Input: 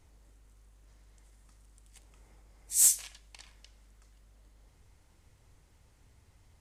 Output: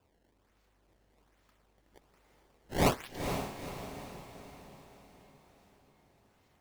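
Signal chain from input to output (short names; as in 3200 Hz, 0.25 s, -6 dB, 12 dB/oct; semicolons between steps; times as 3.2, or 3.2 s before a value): HPF 360 Hz 6 dB/oct; high shelf 8300 Hz -8 dB; decimation with a swept rate 21×, swing 160% 1.2 Hz; on a send: diffused feedback echo 0.466 s, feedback 50%, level -6.5 dB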